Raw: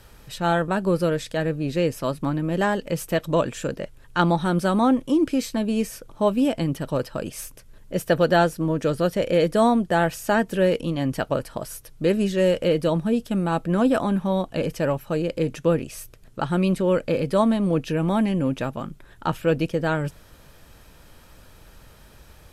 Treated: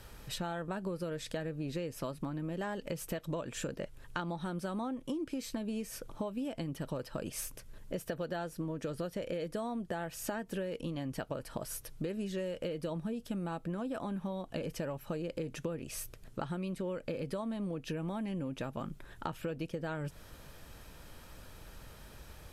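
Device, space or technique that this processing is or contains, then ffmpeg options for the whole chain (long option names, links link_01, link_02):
serial compression, leveller first: -af "acompressor=threshold=-24dB:ratio=2.5,acompressor=threshold=-32dB:ratio=6,volume=-2.5dB"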